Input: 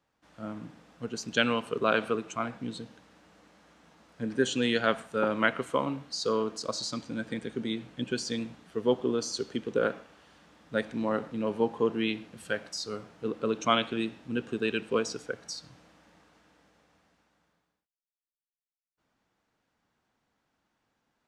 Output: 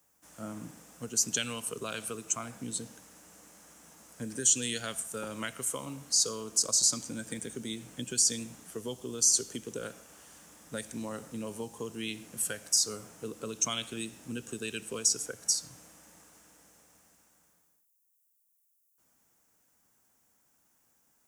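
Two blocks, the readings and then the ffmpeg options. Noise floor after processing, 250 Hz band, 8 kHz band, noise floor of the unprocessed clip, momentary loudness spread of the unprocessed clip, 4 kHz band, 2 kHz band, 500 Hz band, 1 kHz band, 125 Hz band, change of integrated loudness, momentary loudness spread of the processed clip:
-73 dBFS, -8.0 dB, +16.0 dB, under -85 dBFS, 12 LU, +1.0 dB, -9.5 dB, -11.0 dB, -11.5 dB, -4.0 dB, 0.0 dB, 16 LU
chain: -filter_complex "[0:a]highshelf=f=7100:g=5,acrossover=split=120|3100[s0][s1][s2];[s1]acompressor=threshold=0.0141:ratio=6[s3];[s0][s3][s2]amix=inputs=3:normalize=0,aexciter=amount=8.1:drive=3.8:freq=5900"

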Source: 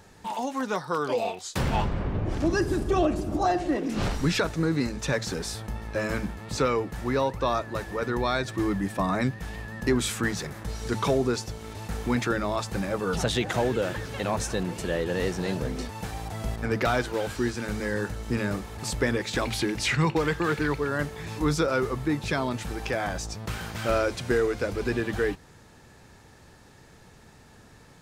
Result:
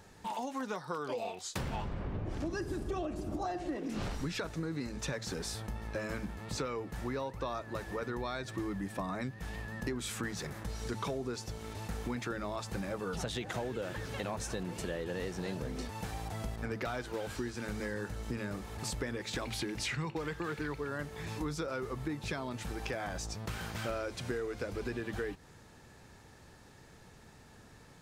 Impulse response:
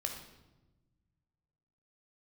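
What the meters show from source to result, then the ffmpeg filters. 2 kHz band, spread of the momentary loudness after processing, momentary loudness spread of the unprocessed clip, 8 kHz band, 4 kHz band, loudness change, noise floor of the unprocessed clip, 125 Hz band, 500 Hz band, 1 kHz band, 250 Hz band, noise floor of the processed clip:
-10.5 dB, 5 LU, 8 LU, -8.0 dB, -9.0 dB, -10.5 dB, -53 dBFS, -9.5 dB, -11.0 dB, -10.5 dB, -10.5 dB, -57 dBFS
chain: -af "acompressor=threshold=0.0316:ratio=5,volume=0.631"

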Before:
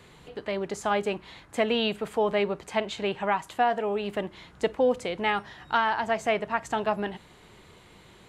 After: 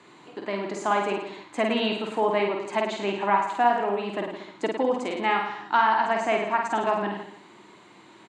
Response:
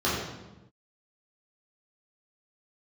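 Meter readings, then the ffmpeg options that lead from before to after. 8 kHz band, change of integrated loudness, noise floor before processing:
no reading, +2.5 dB, -54 dBFS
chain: -filter_complex "[0:a]highpass=f=150:w=0.5412,highpass=f=150:w=1.3066,equalizer=f=160:t=q:w=4:g=-7,equalizer=f=320:t=q:w=4:g=8,equalizer=f=480:t=q:w=4:g=-6,equalizer=f=990:t=q:w=4:g=6,equalizer=f=3300:t=q:w=4:g=-4,equalizer=f=5400:t=q:w=4:g=-4,lowpass=f=8000:w=0.5412,lowpass=f=8000:w=1.3066,asplit=2[s0][s1];[s1]aecho=0:1:50|105|165.5|232|305.3:0.631|0.398|0.251|0.158|0.1[s2];[s0][s2]amix=inputs=2:normalize=0"

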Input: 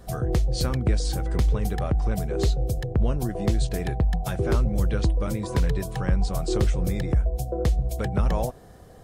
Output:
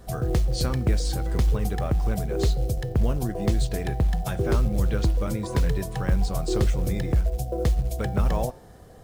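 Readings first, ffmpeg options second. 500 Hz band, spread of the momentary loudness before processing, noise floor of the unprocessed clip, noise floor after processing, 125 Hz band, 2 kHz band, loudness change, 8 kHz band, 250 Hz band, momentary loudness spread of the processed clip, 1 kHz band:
0.0 dB, 3 LU, -47 dBFS, -47 dBFS, 0.0 dB, 0.0 dB, 0.0 dB, +0.5 dB, 0.0 dB, 3 LU, 0.0 dB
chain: -af "acrusher=bits=8:mode=log:mix=0:aa=0.000001,bandreject=f=177.7:t=h:w=4,bandreject=f=355.4:t=h:w=4,bandreject=f=533.1:t=h:w=4,bandreject=f=710.8:t=h:w=4,bandreject=f=888.5:t=h:w=4,bandreject=f=1066.2:t=h:w=4,bandreject=f=1243.9:t=h:w=4,bandreject=f=1421.6:t=h:w=4,bandreject=f=1599.3:t=h:w=4,bandreject=f=1777:t=h:w=4,bandreject=f=1954.7:t=h:w=4,bandreject=f=2132.4:t=h:w=4,bandreject=f=2310.1:t=h:w=4,bandreject=f=2487.8:t=h:w=4,bandreject=f=2665.5:t=h:w=4,bandreject=f=2843.2:t=h:w=4,bandreject=f=3020.9:t=h:w=4,bandreject=f=3198.6:t=h:w=4,bandreject=f=3376.3:t=h:w=4,bandreject=f=3554:t=h:w=4,bandreject=f=3731.7:t=h:w=4,bandreject=f=3909.4:t=h:w=4,bandreject=f=4087.1:t=h:w=4,bandreject=f=4264.8:t=h:w=4,bandreject=f=4442.5:t=h:w=4,bandreject=f=4620.2:t=h:w=4,bandreject=f=4797.9:t=h:w=4,bandreject=f=4975.6:t=h:w=4,bandreject=f=5153.3:t=h:w=4,bandreject=f=5331:t=h:w=4,bandreject=f=5508.7:t=h:w=4,bandreject=f=5686.4:t=h:w=4,bandreject=f=5864.1:t=h:w=4"

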